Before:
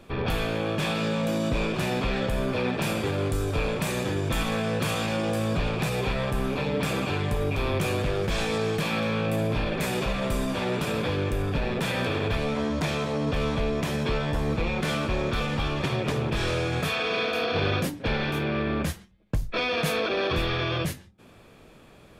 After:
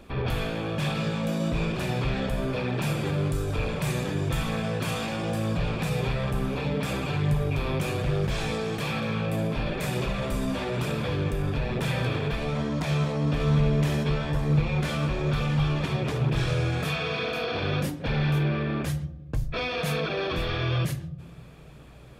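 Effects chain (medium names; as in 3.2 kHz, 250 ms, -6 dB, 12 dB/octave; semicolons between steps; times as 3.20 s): flange 1.1 Hz, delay 0 ms, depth 4.8 ms, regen -54%; hum 60 Hz, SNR 33 dB; in parallel at +1.5 dB: peak limiter -28.5 dBFS, peak gain reduction 9.5 dB; 13.25–14.04 s: on the sum: flutter echo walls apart 11.7 m, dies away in 0.58 s; on a send at -16 dB: reverberation RT60 1.2 s, pre-delay 3 ms; on the sum: trim -3 dB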